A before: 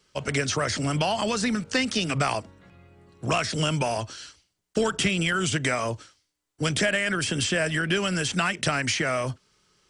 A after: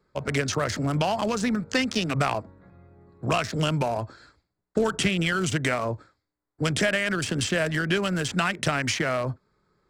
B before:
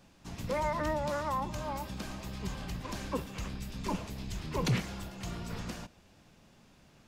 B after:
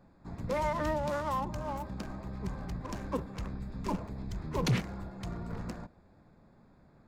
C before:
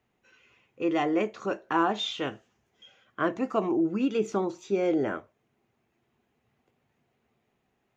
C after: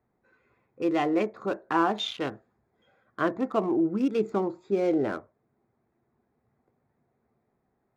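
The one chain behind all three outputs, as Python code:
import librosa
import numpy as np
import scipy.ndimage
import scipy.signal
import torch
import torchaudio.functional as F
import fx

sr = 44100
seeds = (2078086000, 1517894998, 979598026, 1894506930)

y = fx.wiener(x, sr, points=15)
y = F.gain(torch.from_numpy(y), 1.0).numpy()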